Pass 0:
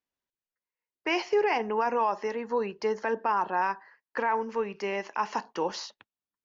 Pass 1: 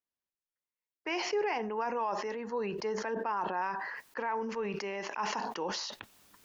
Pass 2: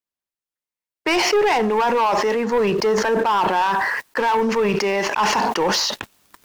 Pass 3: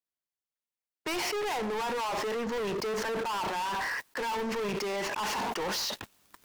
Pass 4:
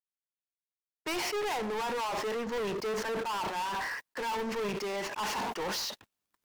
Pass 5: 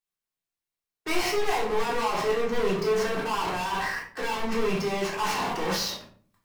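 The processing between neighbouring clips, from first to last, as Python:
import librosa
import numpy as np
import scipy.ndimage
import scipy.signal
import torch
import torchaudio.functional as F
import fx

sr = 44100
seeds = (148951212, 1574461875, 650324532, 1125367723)

y1 = fx.sustainer(x, sr, db_per_s=30.0)
y1 = y1 * librosa.db_to_amplitude(-7.0)
y2 = fx.leveller(y1, sr, passes=3)
y2 = y2 * librosa.db_to_amplitude(7.0)
y3 = np.clip(10.0 ** (24.0 / 20.0) * y2, -1.0, 1.0) / 10.0 ** (24.0 / 20.0)
y3 = y3 * librosa.db_to_amplitude(-6.5)
y4 = fx.upward_expand(y3, sr, threshold_db=-45.0, expansion=2.5)
y5 = fx.room_shoebox(y4, sr, seeds[0], volume_m3=460.0, walls='furnished', distance_m=3.6)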